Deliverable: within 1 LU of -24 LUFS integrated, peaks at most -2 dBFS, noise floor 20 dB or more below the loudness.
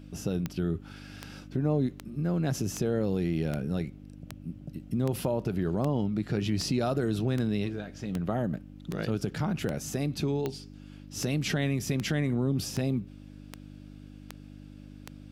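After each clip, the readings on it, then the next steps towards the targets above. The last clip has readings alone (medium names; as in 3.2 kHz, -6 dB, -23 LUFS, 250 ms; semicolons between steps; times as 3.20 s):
clicks found 20; hum 50 Hz; highest harmonic 300 Hz; hum level -47 dBFS; loudness -30.5 LUFS; peak level -16.0 dBFS; loudness target -24.0 LUFS
-> de-click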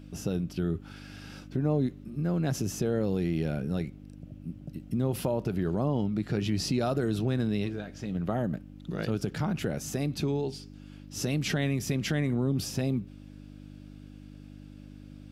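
clicks found 0; hum 50 Hz; highest harmonic 300 Hz; hum level -47 dBFS
-> de-hum 50 Hz, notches 6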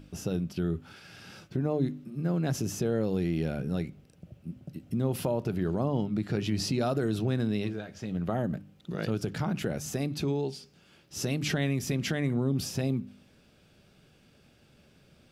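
hum not found; loudness -31.0 LUFS; peak level -16.5 dBFS; loudness target -24.0 LUFS
-> trim +7 dB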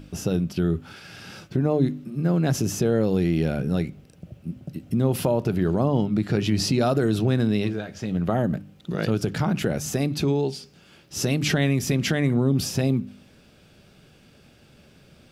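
loudness -24.0 LUFS; peak level -9.5 dBFS; noise floor -54 dBFS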